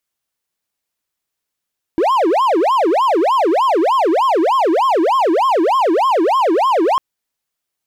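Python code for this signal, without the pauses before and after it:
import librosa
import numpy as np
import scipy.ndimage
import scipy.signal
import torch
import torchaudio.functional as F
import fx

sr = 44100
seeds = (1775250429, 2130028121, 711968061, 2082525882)

y = fx.siren(sr, length_s=5.0, kind='wail', low_hz=316.0, high_hz=1080.0, per_s=3.3, wave='triangle', level_db=-9.0)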